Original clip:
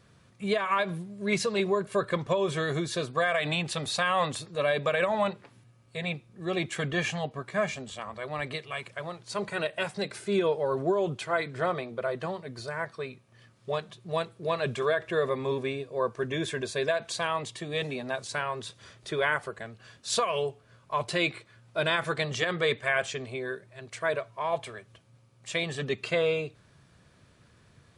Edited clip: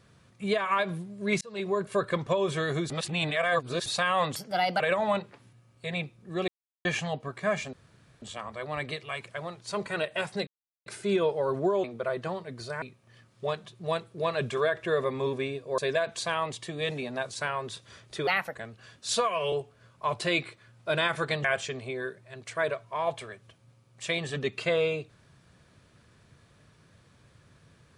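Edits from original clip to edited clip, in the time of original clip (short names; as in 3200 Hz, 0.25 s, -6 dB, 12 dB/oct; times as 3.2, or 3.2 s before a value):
1.41–1.81 fade in
2.9–3.86 reverse
4.36–4.91 speed 125%
6.59–6.96 mute
7.84 insert room tone 0.49 s
10.09 insert silence 0.39 s
11.07–11.82 cut
12.8–13.07 cut
16.03–16.71 cut
19.2–19.56 speed 129%
20.16–20.41 stretch 1.5×
22.33–22.9 cut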